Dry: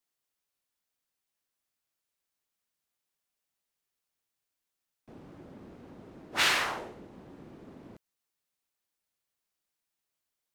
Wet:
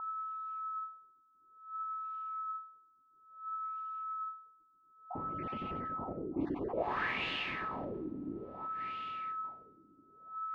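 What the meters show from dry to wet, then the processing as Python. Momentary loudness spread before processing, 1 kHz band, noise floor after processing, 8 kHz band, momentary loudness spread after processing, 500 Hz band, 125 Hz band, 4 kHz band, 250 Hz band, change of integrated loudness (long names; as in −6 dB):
17 LU, +5.0 dB, −68 dBFS, below −30 dB, 12 LU, +5.0 dB, +5.0 dB, −10.0 dB, +8.0 dB, −11.0 dB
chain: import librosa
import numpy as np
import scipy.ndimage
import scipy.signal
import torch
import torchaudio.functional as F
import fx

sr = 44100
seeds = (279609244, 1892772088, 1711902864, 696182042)

p1 = fx.spec_dropout(x, sr, seeds[0], share_pct=36)
p2 = fx.peak_eq(p1, sr, hz=1400.0, db=-12.0, octaves=0.21)
p3 = p2 + fx.echo_diffused(p2, sr, ms=468, feedback_pct=46, wet_db=-8.0, dry=0)
p4 = p3 + 10.0 ** (-49.0 / 20.0) * np.sin(2.0 * np.pi * 1300.0 * np.arange(len(p3)) / sr)
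p5 = fx.filter_lfo_lowpass(p4, sr, shape='sine', hz=0.58, low_hz=290.0, high_hz=2900.0, q=4.7)
p6 = fx.low_shelf(p5, sr, hz=130.0, db=3.5)
p7 = fx.over_compress(p6, sr, threshold_db=-47.0, ratio=-0.5)
y = p6 + (p7 * librosa.db_to_amplitude(-0.5))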